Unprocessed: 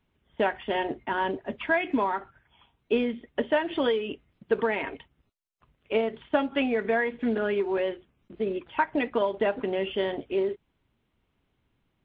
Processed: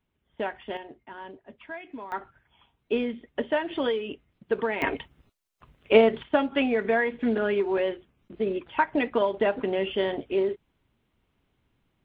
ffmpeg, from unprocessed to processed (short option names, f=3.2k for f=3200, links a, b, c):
-af "asetnsamples=n=441:p=0,asendcmd='0.77 volume volume -14dB;2.12 volume volume -1.5dB;4.82 volume volume 8.5dB;6.23 volume volume 1.5dB',volume=-5.5dB"